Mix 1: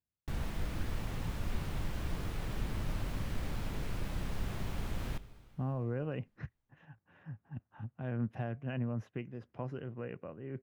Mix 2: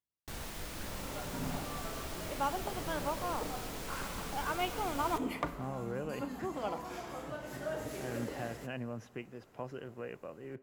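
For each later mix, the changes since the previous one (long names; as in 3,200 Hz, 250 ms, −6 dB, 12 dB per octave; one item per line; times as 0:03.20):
speech: send on
second sound: unmuted
master: add bass and treble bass −10 dB, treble +9 dB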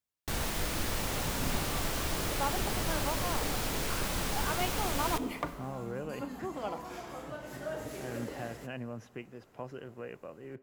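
first sound +9.5 dB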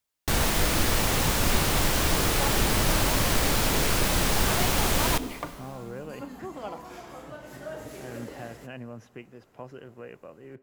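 first sound +9.5 dB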